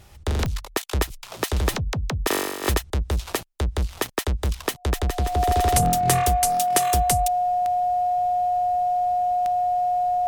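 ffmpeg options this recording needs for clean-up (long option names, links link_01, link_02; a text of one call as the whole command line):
ffmpeg -i in.wav -af "adeclick=threshold=4,bandreject=frequency=720:width=30" out.wav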